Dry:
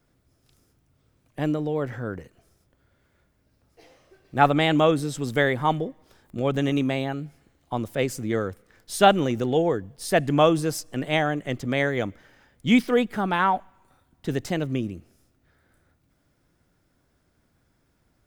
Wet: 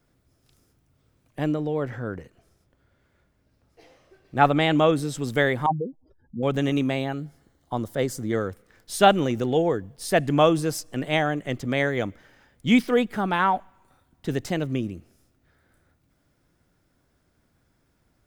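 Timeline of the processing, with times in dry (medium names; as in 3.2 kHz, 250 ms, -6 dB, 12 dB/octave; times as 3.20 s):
1.44–4.93 s: treble shelf 7.2 kHz -5.5 dB
5.66–6.43 s: spectral contrast enhancement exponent 3.1
7.18–8.33 s: peaking EQ 2.5 kHz -12.5 dB 0.29 oct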